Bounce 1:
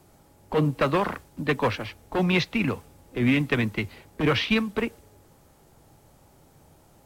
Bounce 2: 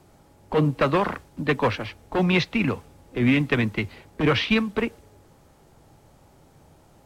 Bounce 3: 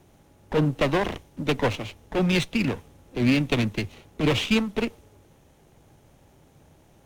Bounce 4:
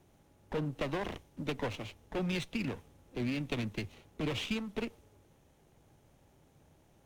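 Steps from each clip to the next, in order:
high shelf 9600 Hz -10 dB; gain +2 dB
minimum comb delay 0.32 ms; gain -1 dB
compressor, threshold -22 dBFS, peak gain reduction 6.5 dB; gain -8.5 dB

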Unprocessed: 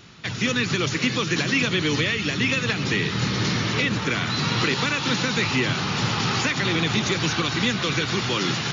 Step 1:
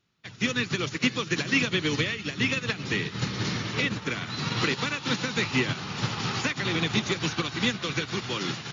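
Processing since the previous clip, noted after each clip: upward expander 2.5:1, over -37 dBFS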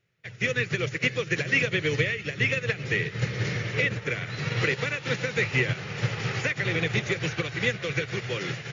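ten-band EQ 125 Hz +9 dB, 250 Hz -10 dB, 500 Hz +12 dB, 1000 Hz -9 dB, 2000 Hz +10 dB, 4000 Hz -6 dB; gain -3 dB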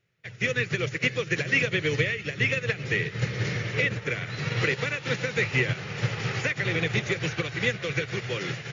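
nothing audible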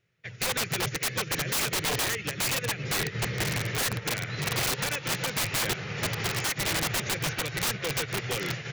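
wrapped overs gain 22 dB

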